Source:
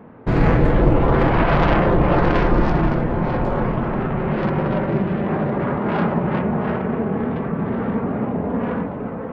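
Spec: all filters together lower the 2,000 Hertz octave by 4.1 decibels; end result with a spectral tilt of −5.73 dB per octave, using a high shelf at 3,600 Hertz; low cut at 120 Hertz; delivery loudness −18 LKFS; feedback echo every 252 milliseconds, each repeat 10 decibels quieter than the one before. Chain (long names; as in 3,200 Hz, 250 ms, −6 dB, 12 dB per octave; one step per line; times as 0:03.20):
high-pass filter 120 Hz
parametric band 2,000 Hz −6.5 dB
high-shelf EQ 3,600 Hz +4 dB
repeating echo 252 ms, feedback 32%, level −10 dB
level +3 dB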